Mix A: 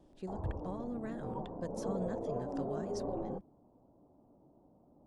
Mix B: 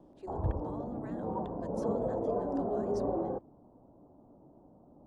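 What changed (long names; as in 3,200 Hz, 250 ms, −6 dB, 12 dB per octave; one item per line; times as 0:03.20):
speech: add Chebyshev high-pass with heavy ripple 270 Hz, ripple 6 dB
background +6.0 dB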